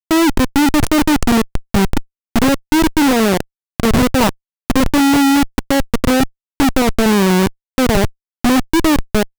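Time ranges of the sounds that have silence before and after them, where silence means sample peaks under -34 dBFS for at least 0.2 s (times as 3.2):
2.36–3.42
3.8–4.32
4.7–6.28
6.6–7.5
7.78–8.1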